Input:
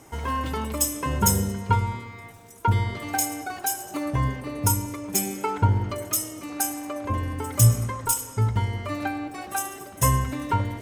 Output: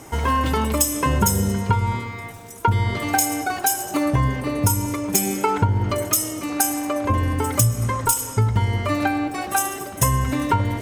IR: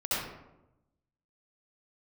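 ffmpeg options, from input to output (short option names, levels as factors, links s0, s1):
-af "acompressor=threshold=0.0708:ratio=10,volume=2.66"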